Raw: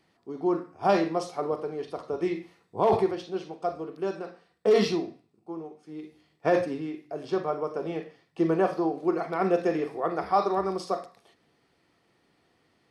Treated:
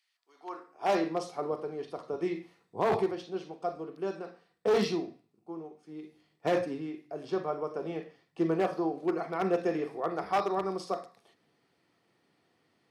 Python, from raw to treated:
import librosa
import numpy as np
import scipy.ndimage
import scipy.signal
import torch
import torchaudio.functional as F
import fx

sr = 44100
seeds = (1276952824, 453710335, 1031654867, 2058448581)

y = np.minimum(x, 2.0 * 10.0 ** (-17.0 / 20.0) - x)
y = fx.filter_sweep_highpass(y, sr, from_hz=2500.0, to_hz=110.0, start_s=0.18, end_s=1.22, q=0.84)
y = y * librosa.db_to_amplitude(-4.0)